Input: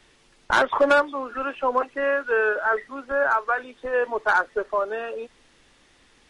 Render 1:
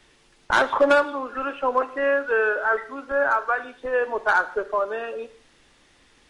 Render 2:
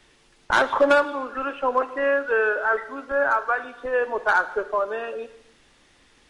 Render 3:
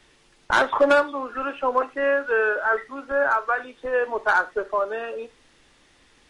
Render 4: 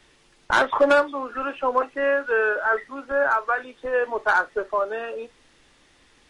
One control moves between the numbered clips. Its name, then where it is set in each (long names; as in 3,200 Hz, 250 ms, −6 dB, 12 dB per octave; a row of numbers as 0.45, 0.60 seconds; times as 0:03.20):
reverb whose tail is shaped and stops, gate: 220, 340, 120, 80 milliseconds